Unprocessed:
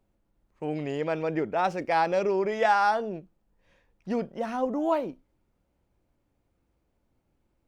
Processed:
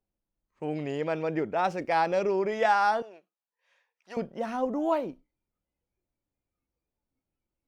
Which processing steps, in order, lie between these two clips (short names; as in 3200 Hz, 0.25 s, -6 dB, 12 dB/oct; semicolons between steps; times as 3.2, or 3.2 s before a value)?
spectral noise reduction 14 dB; 3.02–4.17 HPF 890 Hz 12 dB/oct; gain -1 dB